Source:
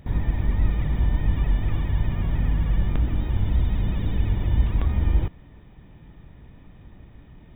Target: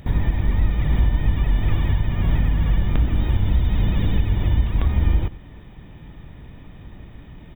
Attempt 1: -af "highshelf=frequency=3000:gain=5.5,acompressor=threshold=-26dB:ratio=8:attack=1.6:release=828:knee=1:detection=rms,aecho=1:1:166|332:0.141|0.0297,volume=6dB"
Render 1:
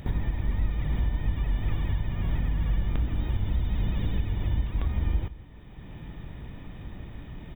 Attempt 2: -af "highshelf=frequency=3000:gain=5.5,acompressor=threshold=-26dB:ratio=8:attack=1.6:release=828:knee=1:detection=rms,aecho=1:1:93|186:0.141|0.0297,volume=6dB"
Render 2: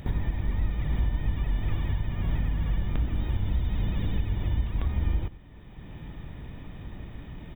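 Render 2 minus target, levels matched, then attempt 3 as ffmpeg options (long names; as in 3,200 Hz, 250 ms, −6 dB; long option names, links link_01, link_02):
downward compressor: peak gain reduction +8.5 dB
-af "highshelf=frequency=3000:gain=5.5,acompressor=threshold=-16.5dB:ratio=8:attack=1.6:release=828:knee=1:detection=rms,aecho=1:1:93|186:0.141|0.0297,volume=6dB"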